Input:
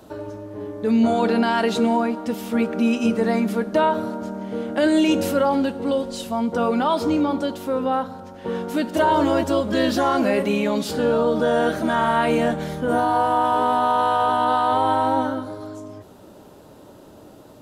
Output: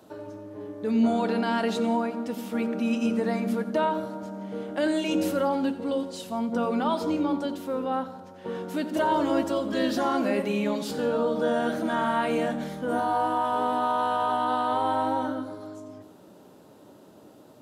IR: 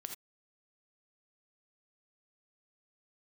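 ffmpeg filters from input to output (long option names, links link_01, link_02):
-filter_complex "[0:a]highpass=120,asplit=2[link_01][link_02];[link_02]equalizer=frequency=220:width=0.63:gain=12[link_03];[1:a]atrim=start_sample=2205,adelay=88[link_04];[link_03][link_04]afir=irnorm=-1:irlink=0,volume=-12.5dB[link_05];[link_01][link_05]amix=inputs=2:normalize=0,volume=-6.5dB"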